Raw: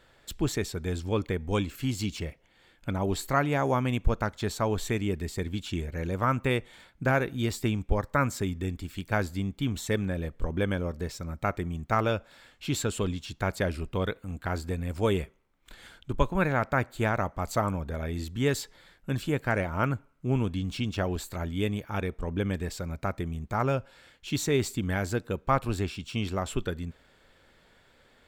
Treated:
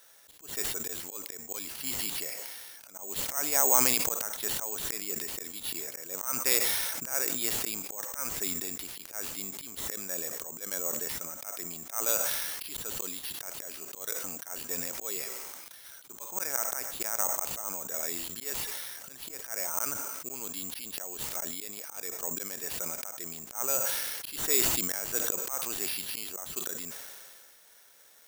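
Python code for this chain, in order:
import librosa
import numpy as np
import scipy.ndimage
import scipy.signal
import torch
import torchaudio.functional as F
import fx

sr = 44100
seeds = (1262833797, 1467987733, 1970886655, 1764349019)

y = scipy.signal.sosfilt(scipy.signal.butter(2, 540.0, 'highpass', fs=sr, output='sos'), x)
y = fx.auto_swell(y, sr, attack_ms=279.0)
y = (np.kron(y[::6], np.eye(6)[0]) * 6)[:len(y)]
y = fx.sustainer(y, sr, db_per_s=26.0)
y = y * 10.0 ** (-2.5 / 20.0)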